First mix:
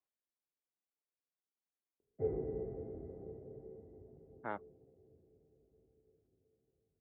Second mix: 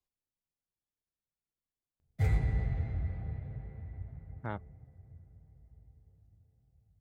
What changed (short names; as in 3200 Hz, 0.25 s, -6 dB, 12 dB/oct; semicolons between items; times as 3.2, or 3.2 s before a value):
background: remove synth low-pass 410 Hz, resonance Q 5; master: remove three-band isolator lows -22 dB, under 240 Hz, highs -20 dB, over 2900 Hz